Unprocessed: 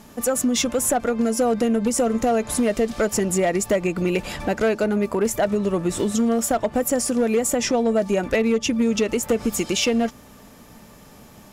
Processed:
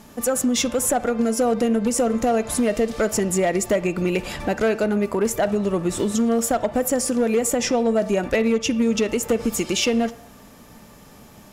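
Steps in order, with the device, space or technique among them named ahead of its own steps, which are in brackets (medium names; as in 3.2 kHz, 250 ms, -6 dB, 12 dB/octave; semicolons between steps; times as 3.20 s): filtered reverb send (on a send: high-pass 370 Hz + low-pass 4.2 kHz 12 dB/octave + reverberation RT60 0.65 s, pre-delay 37 ms, DRR 14.5 dB)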